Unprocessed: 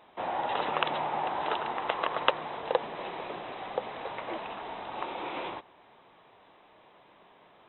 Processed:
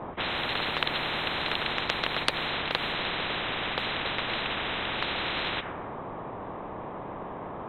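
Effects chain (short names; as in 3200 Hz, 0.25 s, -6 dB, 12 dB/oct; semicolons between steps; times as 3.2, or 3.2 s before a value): low-pass opened by the level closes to 580 Hz, open at -27.5 dBFS; spectral compressor 10:1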